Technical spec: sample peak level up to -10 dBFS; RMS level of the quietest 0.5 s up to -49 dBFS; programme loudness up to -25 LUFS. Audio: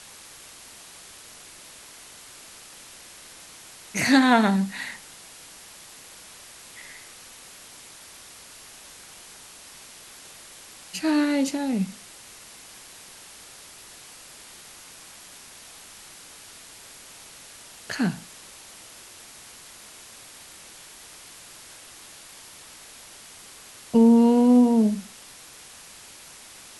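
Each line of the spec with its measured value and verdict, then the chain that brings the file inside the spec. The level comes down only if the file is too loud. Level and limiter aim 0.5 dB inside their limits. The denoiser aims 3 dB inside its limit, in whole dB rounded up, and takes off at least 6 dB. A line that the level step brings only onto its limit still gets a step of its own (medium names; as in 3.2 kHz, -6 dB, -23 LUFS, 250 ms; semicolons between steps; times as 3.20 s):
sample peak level -5.5 dBFS: fail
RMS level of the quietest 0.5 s -46 dBFS: fail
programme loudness -21.0 LUFS: fail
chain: trim -4.5 dB; peak limiter -10.5 dBFS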